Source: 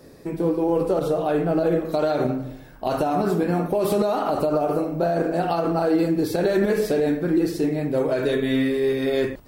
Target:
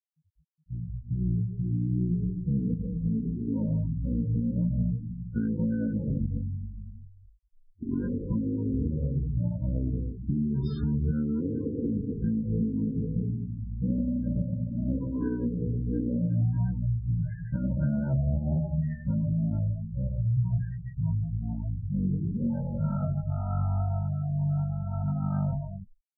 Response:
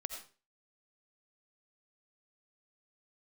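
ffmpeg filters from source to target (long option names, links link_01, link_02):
-af "afftfilt=real='re*gte(hypot(re,im),0.0398)':imag='im*gte(hypot(re,im),0.0398)':win_size=1024:overlap=0.75,asetrate=15964,aresample=44100,volume=-6.5dB"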